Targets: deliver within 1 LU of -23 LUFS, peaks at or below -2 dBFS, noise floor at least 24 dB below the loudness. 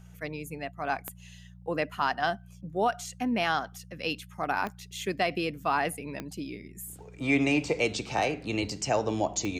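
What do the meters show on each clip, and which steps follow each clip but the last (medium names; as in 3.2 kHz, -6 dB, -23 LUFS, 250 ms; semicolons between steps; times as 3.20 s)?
clicks found 4; hum 60 Hz; highest harmonic 180 Hz; hum level -48 dBFS; loudness -30.5 LUFS; peak level -14.5 dBFS; loudness target -23.0 LUFS
-> de-click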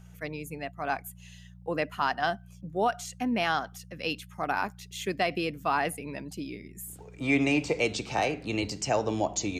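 clicks found 0; hum 60 Hz; highest harmonic 180 Hz; hum level -48 dBFS
-> de-hum 60 Hz, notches 3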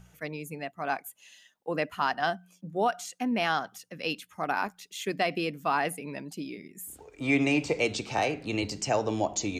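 hum not found; loudness -30.5 LUFS; peak level -14.5 dBFS; loudness target -23.0 LUFS
-> trim +7.5 dB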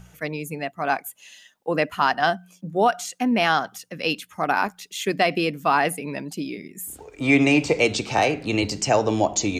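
loudness -23.0 LUFS; peak level -7.0 dBFS; noise floor -60 dBFS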